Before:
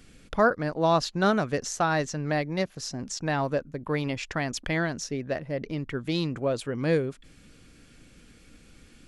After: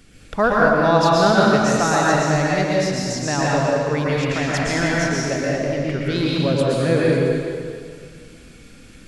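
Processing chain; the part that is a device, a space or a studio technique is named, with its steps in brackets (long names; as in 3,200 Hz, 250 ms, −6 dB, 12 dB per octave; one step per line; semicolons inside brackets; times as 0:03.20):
stairwell (convolution reverb RT60 2.1 s, pre-delay 110 ms, DRR −5.5 dB)
level +3 dB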